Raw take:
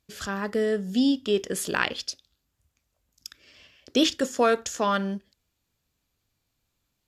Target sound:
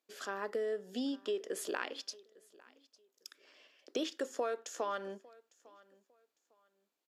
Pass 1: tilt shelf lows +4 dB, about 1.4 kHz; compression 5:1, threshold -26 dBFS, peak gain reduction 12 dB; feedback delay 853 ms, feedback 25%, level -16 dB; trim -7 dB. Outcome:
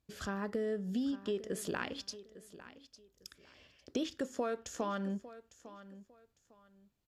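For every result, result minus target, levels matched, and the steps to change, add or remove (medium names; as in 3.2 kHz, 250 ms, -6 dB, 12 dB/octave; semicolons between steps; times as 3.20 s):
echo-to-direct +7.5 dB; 250 Hz band +4.5 dB
change: feedback delay 853 ms, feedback 25%, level -23.5 dB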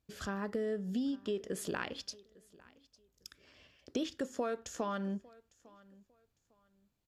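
250 Hz band +4.5 dB
add first: high-pass 330 Hz 24 dB/octave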